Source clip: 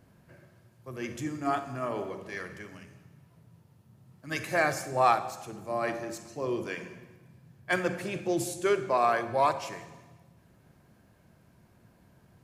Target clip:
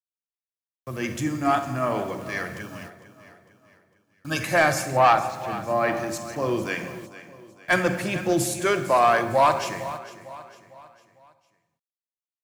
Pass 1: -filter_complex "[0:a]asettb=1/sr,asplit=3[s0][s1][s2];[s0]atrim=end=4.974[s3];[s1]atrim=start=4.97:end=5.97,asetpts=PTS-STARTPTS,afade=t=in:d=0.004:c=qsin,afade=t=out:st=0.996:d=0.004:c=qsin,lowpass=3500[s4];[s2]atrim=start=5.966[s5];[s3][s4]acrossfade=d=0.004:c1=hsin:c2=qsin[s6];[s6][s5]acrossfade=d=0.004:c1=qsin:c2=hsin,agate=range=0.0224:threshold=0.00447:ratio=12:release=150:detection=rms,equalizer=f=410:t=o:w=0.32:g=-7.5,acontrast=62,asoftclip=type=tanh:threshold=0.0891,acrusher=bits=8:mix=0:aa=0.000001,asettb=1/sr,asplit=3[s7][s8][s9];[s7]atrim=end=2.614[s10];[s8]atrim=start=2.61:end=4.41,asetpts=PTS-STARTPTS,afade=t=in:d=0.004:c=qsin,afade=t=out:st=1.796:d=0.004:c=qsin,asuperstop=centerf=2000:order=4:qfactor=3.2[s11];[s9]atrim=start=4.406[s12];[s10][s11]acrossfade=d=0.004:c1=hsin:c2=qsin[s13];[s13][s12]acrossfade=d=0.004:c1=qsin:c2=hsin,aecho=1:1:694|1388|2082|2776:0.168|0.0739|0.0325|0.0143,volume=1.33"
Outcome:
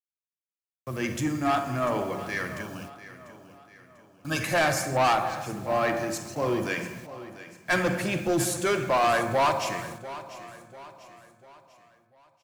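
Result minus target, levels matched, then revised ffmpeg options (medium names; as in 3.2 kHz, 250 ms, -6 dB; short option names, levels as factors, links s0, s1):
echo 241 ms late; saturation: distortion +9 dB
-filter_complex "[0:a]asettb=1/sr,asplit=3[s0][s1][s2];[s0]atrim=end=4.974[s3];[s1]atrim=start=4.97:end=5.97,asetpts=PTS-STARTPTS,afade=t=in:d=0.004:c=qsin,afade=t=out:st=0.996:d=0.004:c=qsin,lowpass=3500[s4];[s2]atrim=start=5.966[s5];[s3][s4]acrossfade=d=0.004:c1=hsin:c2=qsin[s6];[s6][s5]acrossfade=d=0.004:c1=qsin:c2=hsin,agate=range=0.0224:threshold=0.00447:ratio=12:release=150:detection=rms,equalizer=f=410:t=o:w=0.32:g=-7.5,acontrast=62,asoftclip=type=tanh:threshold=0.251,acrusher=bits=8:mix=0:aa=0.000001,asettb=1/sr,asplit=3[s7][s8][s9];[s7]atrim=end=2.614[s10];[s8]atrim=start=2.61:end=4.41,asetpts=PTS-STARTPTS,afade=t=in:d=0.004:c=qsin,afade=t=out:st=1.796:d=0.004:c=qsin,asuperstop=centerf=2000:order=4:qfactor=3.2[s11];[s9]atrim=start=4.406[s12];[s10][s11]acrossfade=d=0.004:c1=hsin:c2=qsin[s13];[s13][s12]acrossfade=d=0.004:c1=qsin:c2=hsin,aecho=1:1:453|906|1359|1812:0.168|0.0739|0.0325|0.0143,volume=1.33"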